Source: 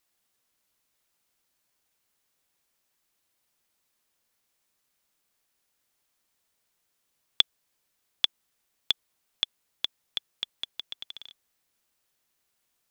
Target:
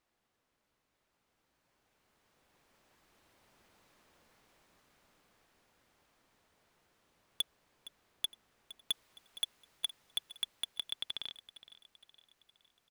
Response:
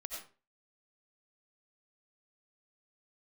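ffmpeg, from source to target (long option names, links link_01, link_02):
-af "asetnsamples=nb_out_samples=441:pad=0,asendcmd='8.91 lowpass f 2600',lowpass=frequency=1200:poles=1,dynaudnorm=framelen=310:gausssize=17:maxgain=15dB,asoftclip=type=tanh:threshold=-30.5dB,aecho=1:1:464|928|1392|1856:0.15|0.0688|0.0317|0.0146,volume=5dB"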